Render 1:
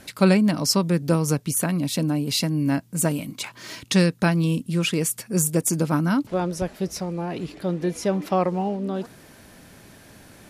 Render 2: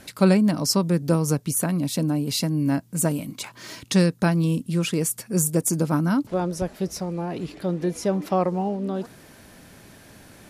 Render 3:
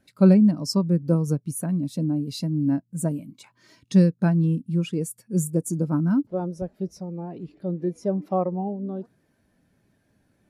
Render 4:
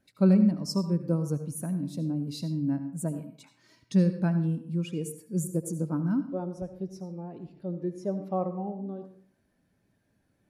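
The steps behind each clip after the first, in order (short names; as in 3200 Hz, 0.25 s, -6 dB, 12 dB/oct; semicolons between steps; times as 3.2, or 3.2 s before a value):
dynamic EQ 2600 Hz, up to -5 dB, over -41 dBFS, Q 0.85
spectral expander 1.5:1
reverb RT60 0.60 s, pre-delay 69 ms, DRR 9.5 dB; gain -6 dB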